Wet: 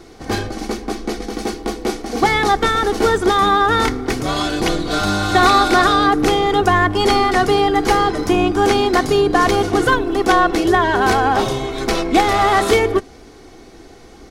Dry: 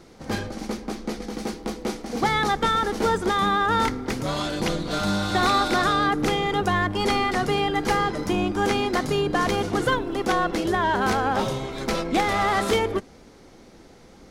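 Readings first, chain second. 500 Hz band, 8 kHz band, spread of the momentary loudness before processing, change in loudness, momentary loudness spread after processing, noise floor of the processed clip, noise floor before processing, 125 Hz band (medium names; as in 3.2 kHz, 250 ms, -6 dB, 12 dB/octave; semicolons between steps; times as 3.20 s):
+8.5 dB, +7.5 dB, 10 LU, +7.5 dB, 11 LU, -42 dBFS, -49 dBFS, +5.0 dB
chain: comb 2.7 ms, depth 49%; trim +6.5 dB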